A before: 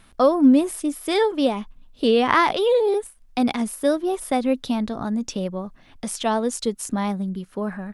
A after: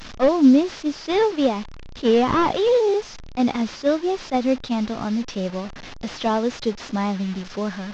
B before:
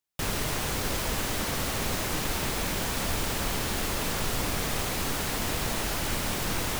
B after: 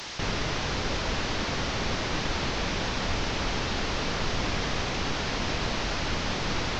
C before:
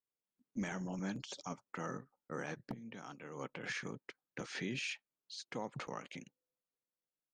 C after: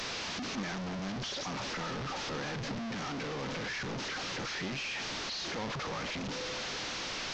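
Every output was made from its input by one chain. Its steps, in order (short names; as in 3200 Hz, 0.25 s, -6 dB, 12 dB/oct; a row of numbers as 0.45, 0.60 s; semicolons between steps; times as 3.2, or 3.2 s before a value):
delta modulation 32 kbps, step -32 dBFS; attack slew limiter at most 450 dB/s; gain +1 dB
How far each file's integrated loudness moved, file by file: +0.5, -0.5, +8.0 LU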